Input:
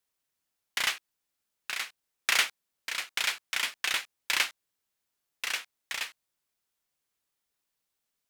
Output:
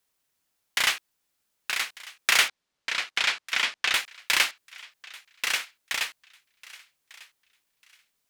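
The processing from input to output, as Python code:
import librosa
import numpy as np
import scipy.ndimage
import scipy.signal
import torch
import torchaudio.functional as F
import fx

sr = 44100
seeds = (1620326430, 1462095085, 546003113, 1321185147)

p1 = fx.lowpass(x, sr, hz=5500.0, slope=12, at=(2.48, 3.94))
p2 = np.clip(10.0 ** (28.5 / 20.0) * p1, -1.0, 1.0) / 10.0 ** (28.5 / 20.0)
p3 = p1 + (p2 * 10.0 ** (-6.5 / 20.0))
p4 = fx.echo_thinned(p3, sr, ms=1197, feedback_pct=26, hz=900.0, wet_db=-19.5)
y = p4 * 10.0 ** (3.0 / 20.0)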